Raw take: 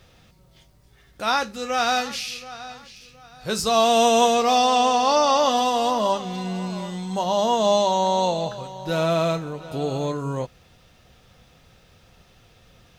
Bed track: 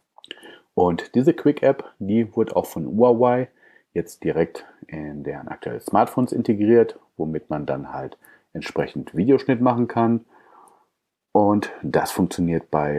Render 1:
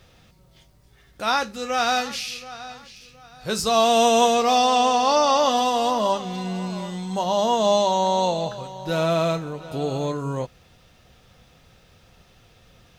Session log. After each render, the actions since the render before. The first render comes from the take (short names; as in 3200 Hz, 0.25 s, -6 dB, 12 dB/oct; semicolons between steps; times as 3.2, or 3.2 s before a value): nothing audible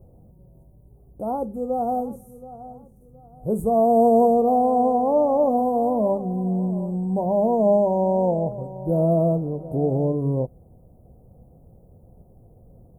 inverse Chebyshev band-stop 1800–4900 Hz, stop band 60 dB; tilt shelf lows +6 dB, about 930 Hz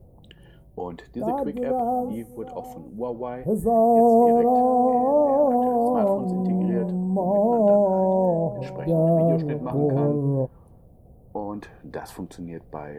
add bed track -14.5 dB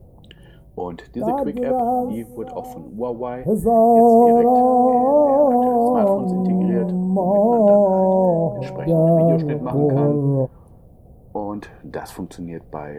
gain +4.5 dB